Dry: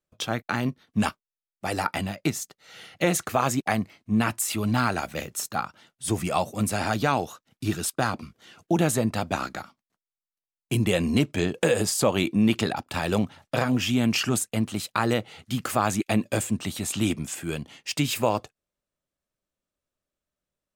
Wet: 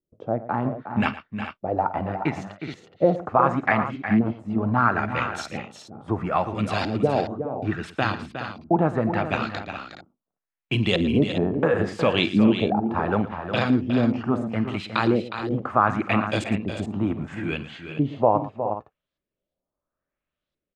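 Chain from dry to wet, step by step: LFO low-pass saw up 0.73 Hz 330–4200 Hz; tapped delay 50/114/362/420 ms -17.5/-15.5/-9.5/-11.5 dB

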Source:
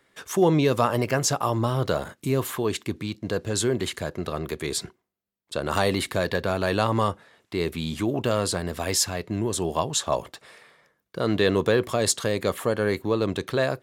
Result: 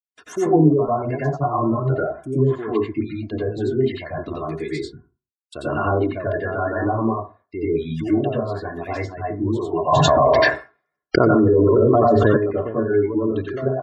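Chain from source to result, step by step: G.711 law mismatch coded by A; gate -50 dBFS, range -44 dB; reverb removal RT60 1.9 s; treble ducked by the level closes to 700 Hz, closed at -20 dBFS; spectral gate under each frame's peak -20 dB strong; high shelf 8200 Hz -3 dB; comb 2.9 ms, depth 63%; dynamic EQ 120 Hz, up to +3 dB, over -43 dBFS, Q 0.93; reverb RT60 0.35 s, pre-delay 82 ms, DRR -7.5 dB; 9.92–12.37 fast leveller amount 100%; gain -4.5 dB

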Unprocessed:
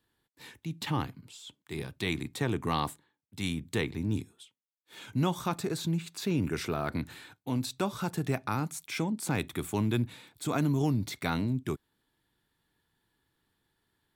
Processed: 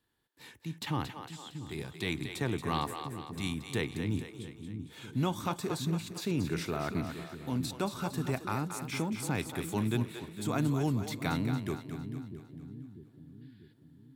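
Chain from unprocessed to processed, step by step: split-band echo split 350 Hz, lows 0.643 s, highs 0.228 s, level -8 dB; spectral gain 13.42–13.73, 1400–5200 Hz +12 dB; gain -2.5 dB

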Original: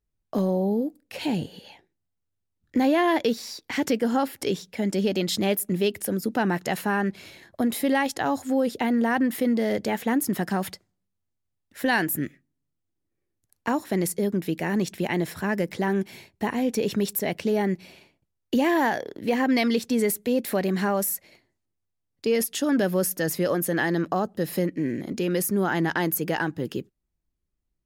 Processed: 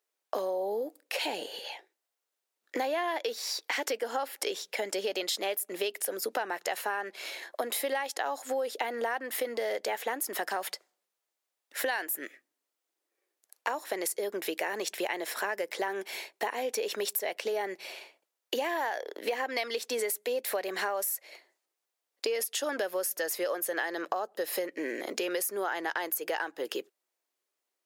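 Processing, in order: HPF 460 Hz 24 dB/oct; compressor 6:1, threshold -37 dBFS, peak gain reduction 17 dB; gain +7.5 dB

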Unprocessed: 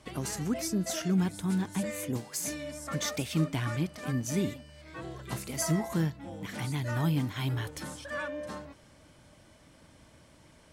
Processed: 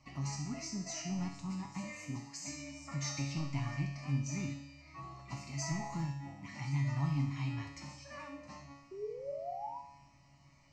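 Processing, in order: LPF 7500 Hz 24 dB/oct; overloaded stage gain 22.5 dB; fixed phaser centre 2300 Hz, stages 8; painted sound rise, 8.91–9.78, 370–990 Hz -38 dBFS; resonator 140 Hz, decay 0.88 s, harmonics all, mix 90%; flutter echo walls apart 11.3 m, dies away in 0.32 s; gain +10 dB

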